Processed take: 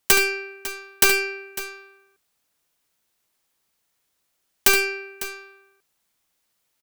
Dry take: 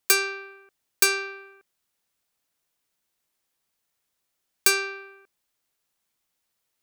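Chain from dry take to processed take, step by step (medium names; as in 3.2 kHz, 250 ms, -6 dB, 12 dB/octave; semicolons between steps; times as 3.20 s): tracing distortion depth 0.28 ms; on a send: multi-tap echo 71/551 ms -9/-15 dB; on the sum: trim +4.5 dB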